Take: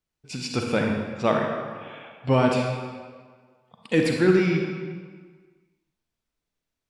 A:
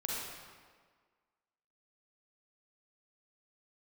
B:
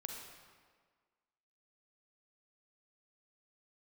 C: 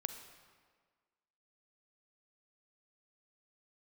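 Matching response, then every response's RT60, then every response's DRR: B; 1.6, 1.6, 1.6 s; -4.5, 1.0, 7.5 dB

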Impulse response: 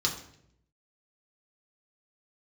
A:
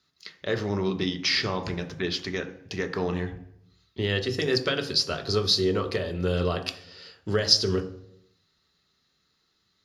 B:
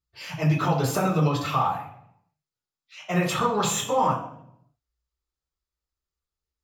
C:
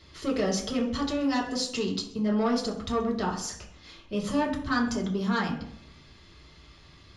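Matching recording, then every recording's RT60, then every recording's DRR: C; 0.70, 0.70, 0.70 s; 4.5, -7.5, -3.0 dB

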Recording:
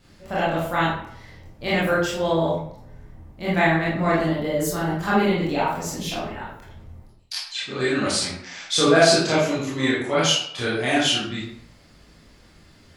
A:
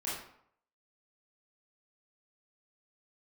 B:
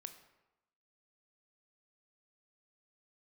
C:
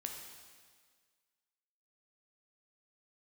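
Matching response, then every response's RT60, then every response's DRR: A; 0.65, 0.95, 1.7 s; -8.5, 8.0, 2.0 dB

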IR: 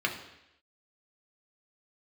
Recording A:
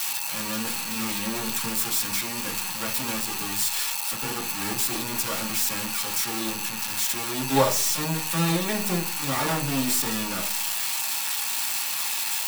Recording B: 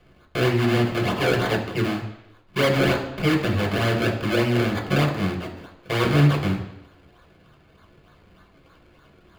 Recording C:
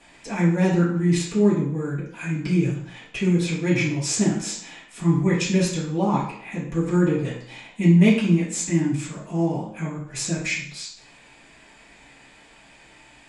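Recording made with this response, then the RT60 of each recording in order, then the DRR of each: B; 0.40, 0.85, 0.60 s; -2.0, 0.5, -11.5 dB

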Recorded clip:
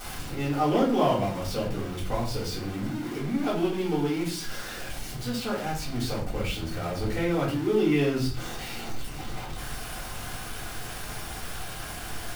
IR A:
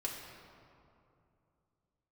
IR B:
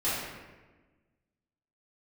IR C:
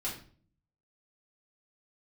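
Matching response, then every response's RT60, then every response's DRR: C; 2.7, 1.3, 0.45 s; -2.5, -12.0, -7.0 dB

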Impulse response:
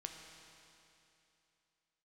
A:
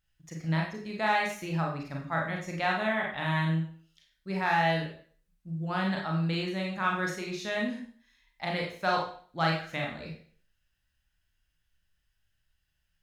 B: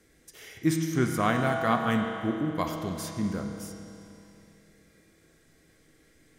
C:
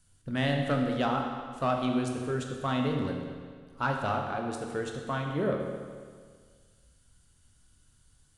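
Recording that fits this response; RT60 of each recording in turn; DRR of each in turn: B; 0.45, 2.9, 1.8 s; -1.5, 2.5, 1.5 dB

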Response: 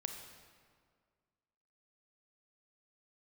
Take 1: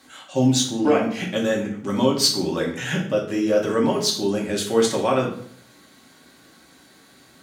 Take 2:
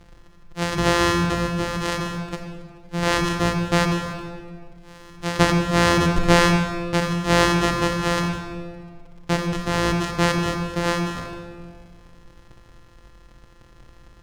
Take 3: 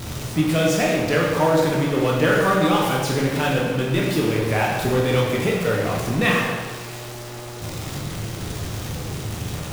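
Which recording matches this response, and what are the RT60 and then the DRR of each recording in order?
2; 0.60, 1.9, 1.4 s; -1.5, 4.5, -3.0 dB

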